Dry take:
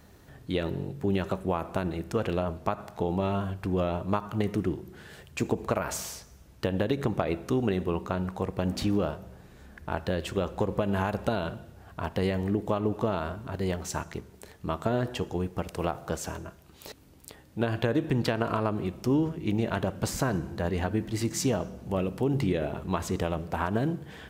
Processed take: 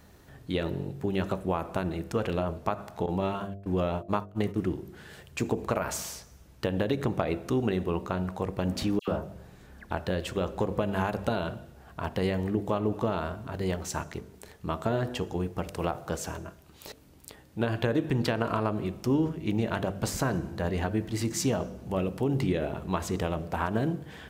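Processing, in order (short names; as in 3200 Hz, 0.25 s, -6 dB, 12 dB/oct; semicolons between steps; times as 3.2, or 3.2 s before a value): 3.06–4.58 gate -30 dBFS, range -24 dB; de-hum 49.42 Hz, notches 15; 8.99–9.91 dispersion lows, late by 88 ms, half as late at 1900 Hz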